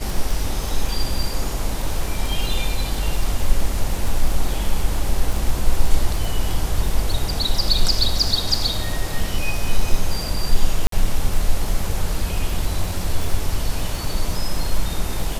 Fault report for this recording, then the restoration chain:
crackle 36 per s -22 dBFS
10.87–10.92 s: dropout 53 ms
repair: de-click; interpolate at 10.87 s, 53 ms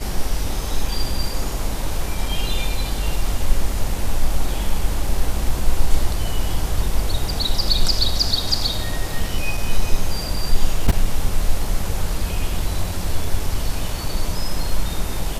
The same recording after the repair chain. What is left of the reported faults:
nothing left

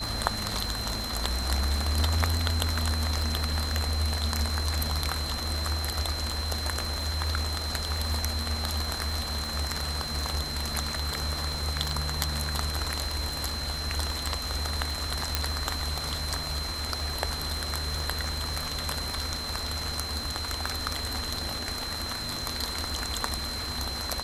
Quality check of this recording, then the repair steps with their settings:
crackle 27 per s -34 dBFS
whine 4.1 kHz -34 dBFS
15.35 s: pop -6 dBFS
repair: de-click; band-stop 4.1 kHz, Q 30

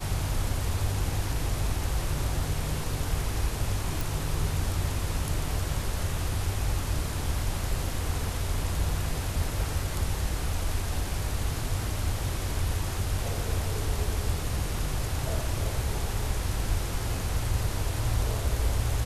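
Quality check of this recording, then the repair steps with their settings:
4.01 s: pop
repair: de-click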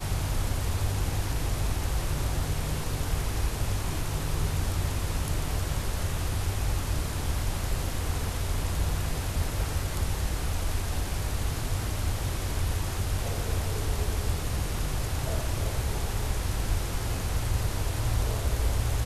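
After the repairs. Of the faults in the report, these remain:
nothing left

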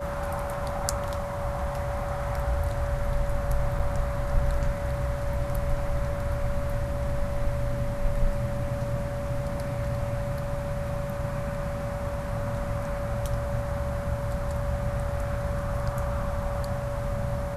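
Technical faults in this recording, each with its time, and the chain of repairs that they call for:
whine 570 Hz -33 dBFS
3.79 s: dropout 5 ms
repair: band-stop 570 Hz, Q 30; interpolate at 3.79 s, 5 ms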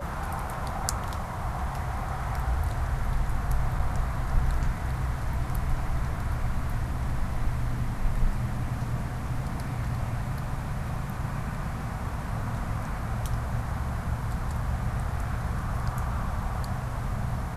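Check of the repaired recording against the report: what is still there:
nothing left

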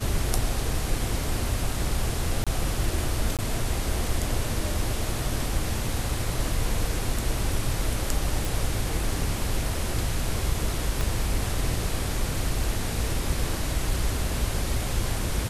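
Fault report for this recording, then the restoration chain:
2.44–2.47 s: dropout 26 ms
3.37–3.39 s: dropout 17 ms
8.45 s: pop
11.01 s: pop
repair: de-click; interpolate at 2.44 s, 26 ms; interpolate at 3.37 s, 17 ms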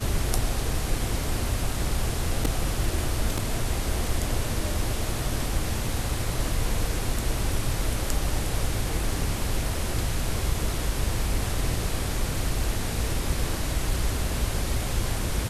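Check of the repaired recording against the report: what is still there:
11.01 s: pop

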